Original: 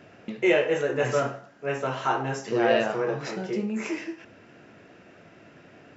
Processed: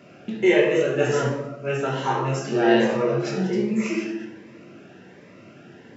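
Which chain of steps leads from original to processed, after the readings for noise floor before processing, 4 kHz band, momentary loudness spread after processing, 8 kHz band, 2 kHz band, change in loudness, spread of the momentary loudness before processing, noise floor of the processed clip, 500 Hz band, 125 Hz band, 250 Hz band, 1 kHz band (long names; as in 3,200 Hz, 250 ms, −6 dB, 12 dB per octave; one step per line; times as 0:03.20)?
−53 dBFS, +3.5 dB, 11 LU, can't be measured, +2.5 dB, +4.0 dB, 12 LU, −48 dBFS, +3.5 dB, +7.5 dB, +7.0 dB, +2.0 dB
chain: high-pass filter 98 Hz
rectangular room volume 390 cubic metres, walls mixed, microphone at 1.2 metres
phaser whose notches keep moving one way rising 1.3 Hz
level +2.5 dB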